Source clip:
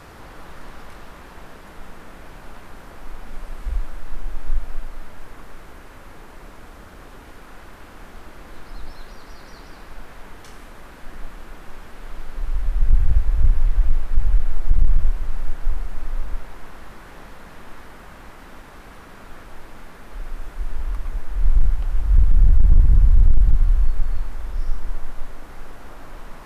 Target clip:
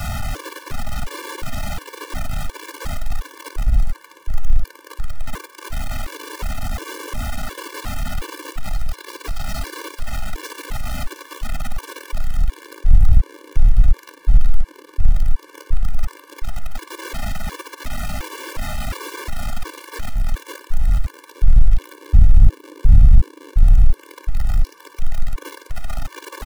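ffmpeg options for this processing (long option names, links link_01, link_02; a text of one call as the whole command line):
ffmpeg -i in.wav -filter_complex "[0:a]aeval=exprs='val(0)+0.5*0.0841*sgn(val(0))':channel_layout=same,acrossover=split=140|600[link_01][link_02][link_03];[link_01]acontrast=83[link_04];[link_02]agate=range=-33dB:threshold=-38dB:ratio=3:detection=peak[link_05];[link_03]aecho=1:1:55|328|428:0.211|0.188|0.237[link_06];[link_04][link_05][link_06]amix=inputs=3:normalize=0,afftfilt=real='re*gt(sin(2*PI*1.4*pts/sr)*(1-2*mod(floor(b*sr/1024/300),2)),0)':imag='im*gt(sin(2*PI*1.4*pts/sr)*(1-2*mod(floor(b*sr/1024/300),2)),0)':win_size=1024:overlap=0.75" out.wav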